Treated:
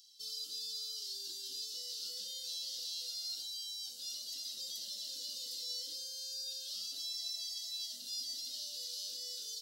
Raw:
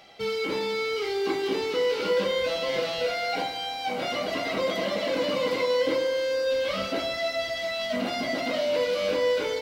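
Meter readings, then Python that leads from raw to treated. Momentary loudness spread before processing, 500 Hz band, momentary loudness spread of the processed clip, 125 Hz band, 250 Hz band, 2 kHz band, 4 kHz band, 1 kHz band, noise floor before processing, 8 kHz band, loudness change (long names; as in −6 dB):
4 LU, below −40 dB, 2 LU, below −35 dB, below −35 dB, −35.0 dB, −5.5 dB, below −40 dB, −33 dBFS, +2.5 dB, −12.5 dB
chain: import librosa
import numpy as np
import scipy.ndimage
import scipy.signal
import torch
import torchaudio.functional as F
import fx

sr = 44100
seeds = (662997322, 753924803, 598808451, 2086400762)

y = scipy.signal.sosfilt(scipy.signal.cheby2(4, 40, 2400.0, 'highpass', fs=sr, output='sos'), x)
y = y * librosa.db_to_amplitude(3.0)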